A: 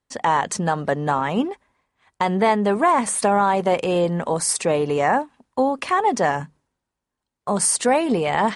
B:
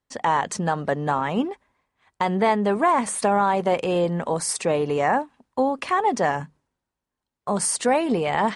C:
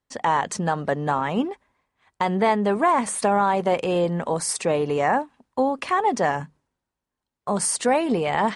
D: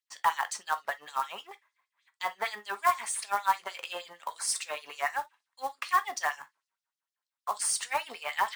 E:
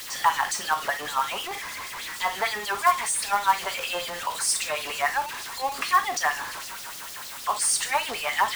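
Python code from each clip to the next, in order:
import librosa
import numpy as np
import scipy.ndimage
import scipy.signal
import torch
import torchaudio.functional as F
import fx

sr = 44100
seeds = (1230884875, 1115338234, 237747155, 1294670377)

y1 = fx.high_shelf(x, sr, hz=7700.0, db=-4.5)
y1 = y1 * librosa.db_to_amplitude(-2.0)
y2 = y1
y3 = fx.filter_lfo_highpass(y2, sr, shape='sine', hz=6.5, low_hz=960.0, high_hz=5300.0, q=2.1)
y3 = fx.quant_float(y3, sr, bits=2)
y3 = fx.rev_gated(y3, sr, seeds[0], gate_ms=80, shape='falling', drr_db=9.5)
y3 = y3 * librosa.db_to_amplitude(-6.5)
y4 = y3 + 0.5 * 10.0 ** (-33.0 / 20.0) * np.sign(y3)
y4 = y4 * librosa.db_to_amplitude(4.0)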